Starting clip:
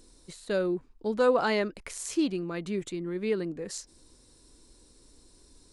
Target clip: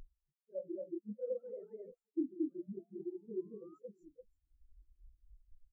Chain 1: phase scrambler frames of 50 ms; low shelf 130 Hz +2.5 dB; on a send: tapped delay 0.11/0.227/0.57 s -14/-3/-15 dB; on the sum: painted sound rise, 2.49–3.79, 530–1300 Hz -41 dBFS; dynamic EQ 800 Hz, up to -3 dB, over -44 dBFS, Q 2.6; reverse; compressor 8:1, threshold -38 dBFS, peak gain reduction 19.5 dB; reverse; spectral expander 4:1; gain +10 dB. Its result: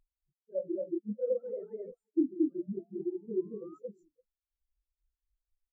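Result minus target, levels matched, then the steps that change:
compressor: peak gain reduction -8 dB
change: compressor 8:1, threshold -47 dBFS, peak gain reduction 27.5 dB

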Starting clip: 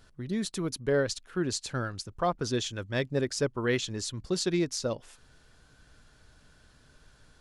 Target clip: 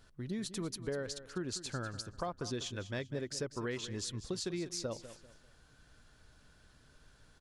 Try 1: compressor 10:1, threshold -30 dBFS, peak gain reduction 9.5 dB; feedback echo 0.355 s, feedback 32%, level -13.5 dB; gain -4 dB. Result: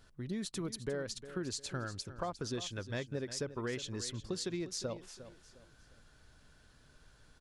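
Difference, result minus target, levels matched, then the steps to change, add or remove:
echo 0.159 s late
change: feedback echo 0.196 s, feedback 32%, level -13.5 dB

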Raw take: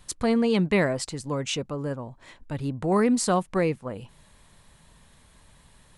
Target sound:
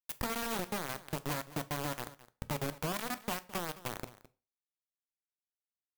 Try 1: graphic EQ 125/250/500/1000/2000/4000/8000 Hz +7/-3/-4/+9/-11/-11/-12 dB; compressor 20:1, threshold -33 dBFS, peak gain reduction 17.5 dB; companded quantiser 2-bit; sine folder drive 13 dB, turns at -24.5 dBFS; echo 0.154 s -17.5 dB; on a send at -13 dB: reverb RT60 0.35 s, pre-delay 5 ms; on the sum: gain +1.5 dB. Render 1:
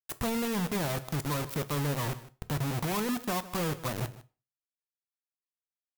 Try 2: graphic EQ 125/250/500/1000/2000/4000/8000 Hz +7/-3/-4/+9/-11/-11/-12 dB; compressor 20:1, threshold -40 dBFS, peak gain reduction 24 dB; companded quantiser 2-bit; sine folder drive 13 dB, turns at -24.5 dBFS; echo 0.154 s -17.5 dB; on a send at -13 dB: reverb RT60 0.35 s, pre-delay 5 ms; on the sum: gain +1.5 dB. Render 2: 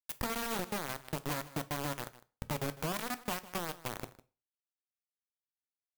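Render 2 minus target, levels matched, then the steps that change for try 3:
echo 59 ms early
change: echo 0.213 s -17.5 dB

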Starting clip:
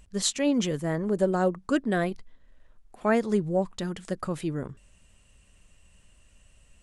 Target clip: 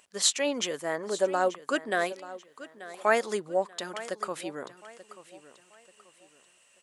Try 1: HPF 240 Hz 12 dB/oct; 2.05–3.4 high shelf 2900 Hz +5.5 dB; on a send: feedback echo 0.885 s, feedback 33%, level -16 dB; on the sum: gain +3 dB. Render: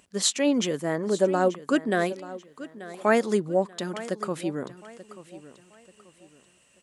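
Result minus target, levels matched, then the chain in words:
250 Hz band +7.5 dB
HPF 570 Hz 12 dB/oct; 2.05–3.4 high shelf 2900 Hz +5.5 dB; on a send: feedback echo 0.885 s, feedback 33%, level -16 dB; on the sum: gain +3 dB

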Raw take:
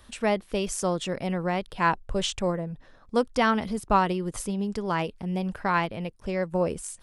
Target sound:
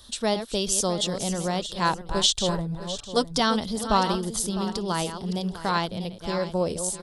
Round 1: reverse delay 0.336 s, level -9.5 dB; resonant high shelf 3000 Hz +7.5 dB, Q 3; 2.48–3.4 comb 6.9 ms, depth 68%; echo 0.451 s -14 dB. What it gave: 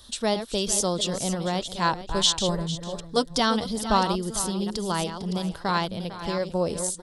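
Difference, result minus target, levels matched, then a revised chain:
echo 0.204 s early
reverse delay 0.336 s, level -9.5 dB; resonant high shelf 3000 Hz +7.5 dB, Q 3; 2.48–3.4 comb 6.9 ms, depth 68%; echo 0.655 s -14 dB

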